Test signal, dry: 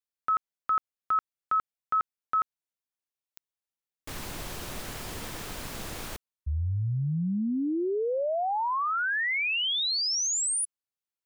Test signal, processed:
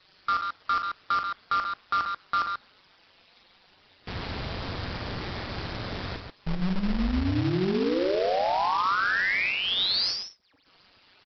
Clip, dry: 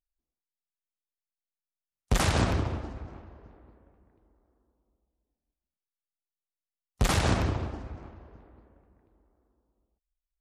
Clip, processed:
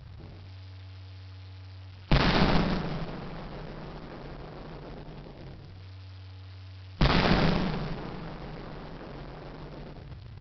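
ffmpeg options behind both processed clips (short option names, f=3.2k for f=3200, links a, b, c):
-af "aeval=exprs='val(0)+0.5*0.0133*sgn(val(0))':c=same,afftdn=nr=16:nf=-50,adynamicequalizer=threshold=0.00224:dfrequency=2800:dqfactor=4.4:tfrequency=2800:tqfactor=4.4:attack=5:release=100:ratio=0.438:range=2.5:mode=cutabove:tftype=bell,acontrast=21,aeval=exprs='val(0)*sin(2*PI*94*n/s)':c=same,aecho=1:1:43.73|137:0.355|0.501,aresample=11025,acrusher=bits=2:mode=log:mix=0:aa=0.000001,aresample=44100,volume=-2dB"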